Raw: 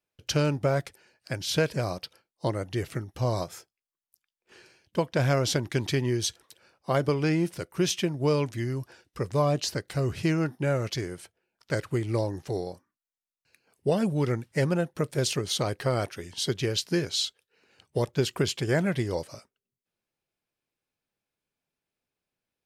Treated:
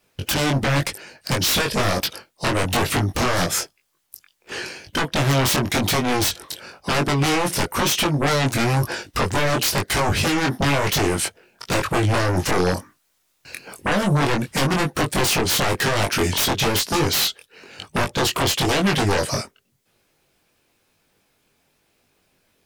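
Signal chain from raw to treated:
speech leveller within 5 dB 0.5 s
harmonic and percussive parts rebalanced harmonic −7 dB
downward compressor 5 to 1, threshold −33 dBFS, peak gain reduction 13.5 dB
sine wavefolder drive 16 dB, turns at −21.5 dBFS
chorus effect 1 Hz, delay 20 ms, depth 2.6 ms
level +8.5 dB

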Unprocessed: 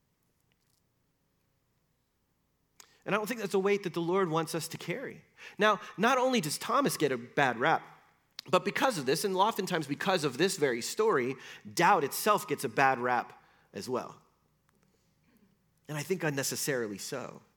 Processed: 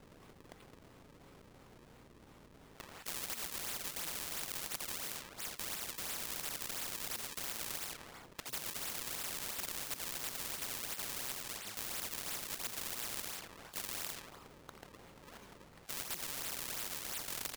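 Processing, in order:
turntable brake at the end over 0.78 s
high-shelf EQ 8,200 Hz −7.5 dB
notch filter 1,700 Hz, Q 7.4
in parallel at +2 dB: brickwall limiter −22.5 dBFS, peak gain reduction 11.5 dB
on the sum: wrap-around overflow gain 23 dB
on a send: echo with shifted repeats 85 ms, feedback 31%, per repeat +45 Hz, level −13 dB
on the sum: sample-and-hold swept by an LFO 35×, swing 160% 2.9 Hz
every bin compressed towards the loudest bin 10 to 1
level +2 dB

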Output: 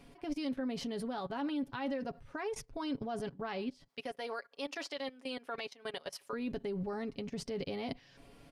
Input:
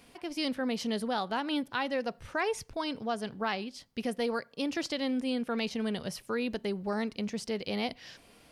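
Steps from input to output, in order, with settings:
0:03.88–0:06.33: high-pass filter 680 Hz 12 dB per octave
output level in coarse steps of 21 dB
spectral tilt −2 dB per octave
comb filter 7.2 ms, depth 52%
level +2 dB

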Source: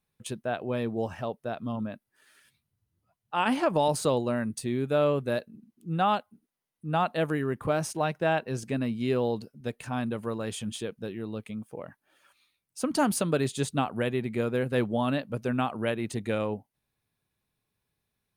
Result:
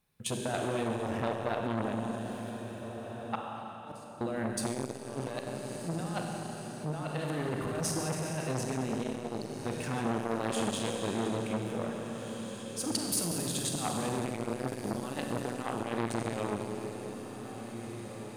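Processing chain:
compressor whose output falls as the input rises −31 dBFS, ratio −0.5
feedback delay with all-pass diffusion 1,877 ms, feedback 41%, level −12.5 dB
0:03.35–0:04.21: gate with flip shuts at −30 dBFS, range −29 dB
four-comb reverb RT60 3.4 s, combs from 31 ms, DRR 0 dB
saturating transformer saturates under 1,300 Hz

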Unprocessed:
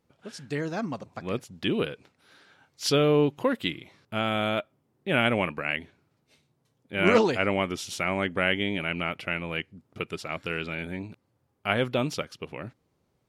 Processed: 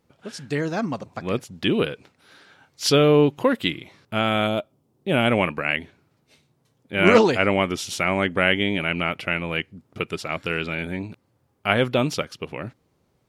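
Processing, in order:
0:04.46–0:05.27: parametric band 1,800 Hz −13 dB → −7 dB 1.2 octaves
level +5.5 dB

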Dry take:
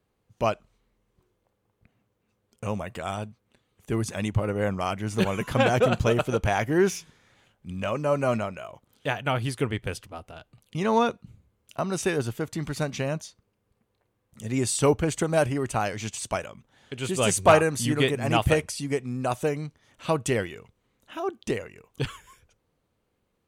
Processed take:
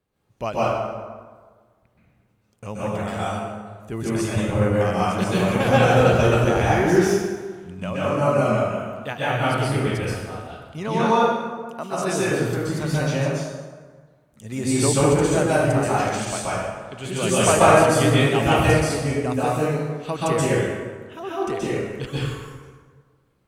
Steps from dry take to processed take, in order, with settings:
0:10.88–0:12.14: high-pass filter 220 Hz 12 dB per octave
dense smooth reverb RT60 1.5 s, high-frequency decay 0.6×, pre-delay 115 ms, DRR −8.5 dB
level −3.5 dB

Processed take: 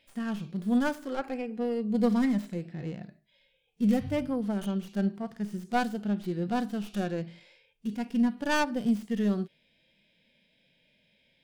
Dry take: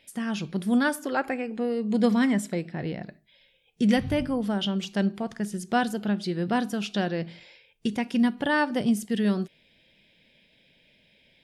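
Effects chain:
stylus tracing distortion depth 0.3 ms
harmonic and percussive parts rebalanced percussive −15 dB
level −2.5 dB

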